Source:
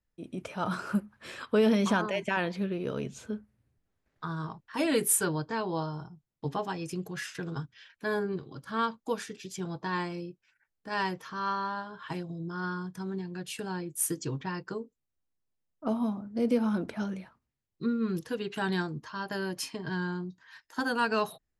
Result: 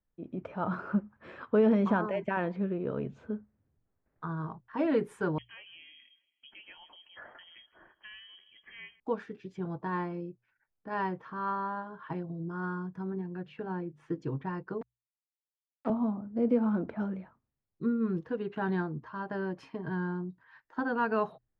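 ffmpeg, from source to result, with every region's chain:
-filter_complex "[0:a]asettb=1/sr,asplit=3[s0][s1][s2];[s0]atrim=end=5.384[s3];[s1]atrim=start=5.38:end=9,asetpts=PTS-STARTPTS,afade=t=in:d=0.004:c=qsin,afade=t=out:st=3.616:d=0.004:c=qsin,acompressor=threshold=0.00794:ratio=2:attack=3.2:release=140:knee=1:detection=peak,aecho=1:1:161|322|483|644:0.0891|0.0463|0.0241|0.0125,atrim=end_sample=159642,lowpass=f=2900:t=q:w=0.5098,lowpass=f=2900:t=q:w=0.6013,lowpass=f=2900:t=q:w=0.9,lowpass=f=2900:t=q:w=2.563,afreqshift=-3400[s4];[s2]atrim=start=8.996[s5];[s3][s4]acrossfade=d=0.004:c1=hsin:c2=qsin[s6];[s6][s5]acrossfade=d=0.004:c1=qsin:c2=hsin,asettb=1/sr,asplit=3[s7][s8][s9];[s7]atrim=end=13.124[s10];[s8]atrim=start=13.12:end=14.22,asetpts=PTS-STARTPTS,afade=t=in:d=0.004:c=qsin,afade=t=out:st=1.096:d=0.004:c=qsin,lowpass=3700,bandreject=f=50:t=h:w=6,bandreject=f=100:t=h:w=6,bandreject=f=150:t=h:w=6,bandreject=f=200:t=h:w=6,bandreject=f=250:t=h:w=6[s11];[s9]atrim=start=14.216[s12];[s10][s11]acrossfade=d=0.004:c1=hsin:c2=qsin[s13];[s13][s12]acrossfade=d=0.004:c1=qsin:c2=hsin,asettb=1/sr,asplit=3[s14][s15][s16];[s14]atrim=end=14.814[s17];[s15]atrim=start=14.81:end=15.9,asetpts=PTS-STARTPTS,afade=t=in:d=0.004:c=qsin,afade=t=out:st=1.086:d=0.004:c=qsin,aeval=exprs='val(0)*gte(abs(val(0)),0.0188)':c=same,highpass=f=170:w=0.5412,highpass=f=170:w=1.3066[s18];[s16]atrim=start=15.896[s19];[s17][s18]acrossfade=d=0.004:c1=hsin:c2=qsin[s20];[s20][s19]acrossfade=d=0.004:c1=qsin:c2=hsin,lowpass=1400,bandreject=f=60:t=h:w=6,bandreject=f=120:t=h:w=6"

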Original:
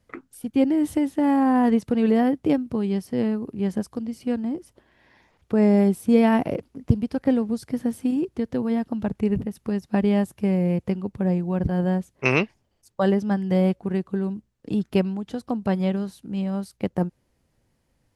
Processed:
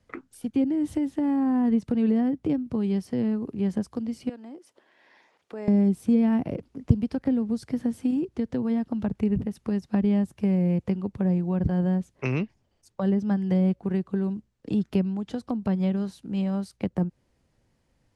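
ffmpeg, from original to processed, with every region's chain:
-filter_complex "[0:a]asettb=1/sr,asplit=3[s0][s1][s2];[s0]atrim=end=4.294[s3];[s1]atrim=start=4.29:end=5.68,asetpts=PTS-STARTPTS,afade=t=in:d=0.004:c=qsin,afade=t=out:st=1.386:d=0.004:c=qsin,highpass=370,acompressor=threshold=0.00251:ratio=1.5:attack=3.2:release=140:knee=1:detection=peak[s4];[s2]atrim=start=5.676[s5];[s3][s4]acrossfade=d=0.004:c1=hsin:c2=qsin[s6];[s6][s5]acrossfade=d=0.004:c1=qsin:c2=hsin,lowpass=8700,acrossover=split=280[s7][s8];[s8]acompressor=threshold=0.0282:ratio=10[s9];[s7][s9]amix=inputs=2:normalize=0"

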